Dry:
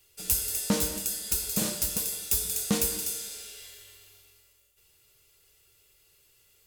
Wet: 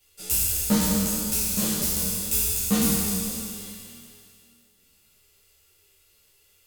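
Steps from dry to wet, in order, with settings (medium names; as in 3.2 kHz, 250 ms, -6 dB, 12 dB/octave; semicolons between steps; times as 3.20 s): spectral sustain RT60 2.57 s; three-phase chorus; trim +1.5 dB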